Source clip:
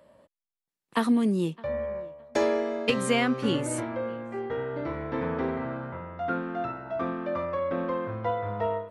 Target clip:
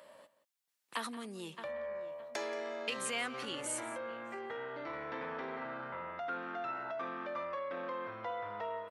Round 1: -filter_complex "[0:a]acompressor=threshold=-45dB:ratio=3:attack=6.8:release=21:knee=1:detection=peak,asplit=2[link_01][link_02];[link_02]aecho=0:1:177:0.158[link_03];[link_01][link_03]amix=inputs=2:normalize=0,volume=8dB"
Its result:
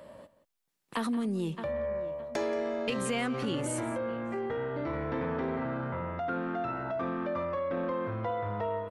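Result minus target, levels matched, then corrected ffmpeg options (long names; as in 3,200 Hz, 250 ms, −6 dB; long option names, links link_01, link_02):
1,000 Hz band −2.5 dB
-filter_complex "[0:a]acompressor=threshold=-45dB:ratio=3:attack=6.8:release=21:knee=1:detection=peak,highpass=frequency=1300:poles=1,asplit=2[link_01][link_02];[link_02]aecho=0:1:177:0.158[link_03];[link_01][link_03]amix=inputs=2:normalize=0,volume=8dB"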